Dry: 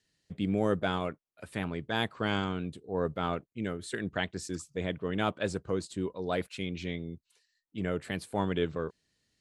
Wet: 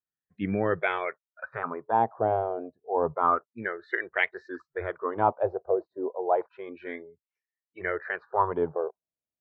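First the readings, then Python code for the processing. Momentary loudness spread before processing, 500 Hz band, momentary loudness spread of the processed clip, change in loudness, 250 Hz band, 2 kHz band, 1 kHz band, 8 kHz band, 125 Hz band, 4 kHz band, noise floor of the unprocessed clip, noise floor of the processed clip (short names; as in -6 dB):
8 LU, +5.0 dB, 13 LU, +4.5 dB, -3.0 dB, +5.5 dB, +10.0 dB, under -30 dB, -5.0 dB, -10.5 dB, -80 dBFS, under -85 dBFS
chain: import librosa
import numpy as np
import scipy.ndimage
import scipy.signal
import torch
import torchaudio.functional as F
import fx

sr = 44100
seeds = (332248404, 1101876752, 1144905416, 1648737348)

y = fx.noise_reduce_blind(x, sr, reduce_db=27)
y = fx.filter_lfo_lowpass(y, sr, shape='sine', hz=0.3, low_hz=670.0, high_hz=2200.0, q=5.5)
y = scipy.ndimage.gaussian_filter1d(y, 2.0, mode='constant')
y = y * 10.0 ** (2.0 / 20.0)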